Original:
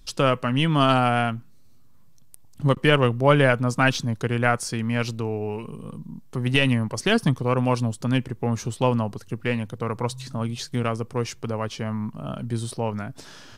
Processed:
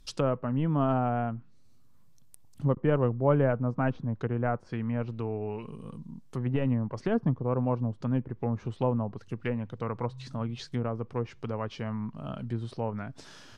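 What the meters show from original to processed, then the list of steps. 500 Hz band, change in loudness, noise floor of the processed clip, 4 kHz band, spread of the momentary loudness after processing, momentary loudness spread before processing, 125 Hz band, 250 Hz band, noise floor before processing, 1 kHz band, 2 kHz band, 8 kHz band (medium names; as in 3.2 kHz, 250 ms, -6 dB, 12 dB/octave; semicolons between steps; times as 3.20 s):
-6.0 dB, -7.0 dB, -52 dBFS, -19.0 dB, 11 LU, 13 LU, -5.5 dB, -5.5 dB, -47 dBFS, -9.0 dB, -16.0 dB, under -15 dB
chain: low-pass that closes with the level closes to 900 Hz, closed at -20 dBFS; trim -5.5 dB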